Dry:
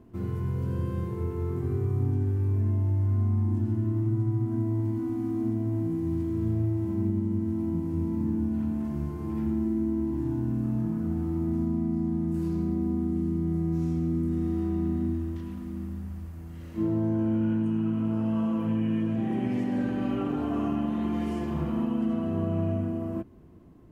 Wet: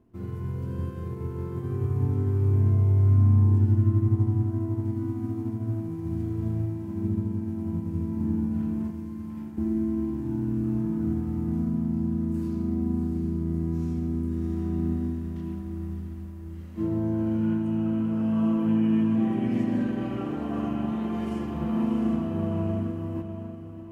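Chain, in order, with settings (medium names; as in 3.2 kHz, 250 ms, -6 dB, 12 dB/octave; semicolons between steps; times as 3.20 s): 8.90–9.58 s: high-pass 1.4 kHz 6 dB/octave; echo that smears into a reverb 671 ms, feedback 50%, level -6 dB; upward expansion 1.5:1, over -42 dBFS; trim +2.5 dB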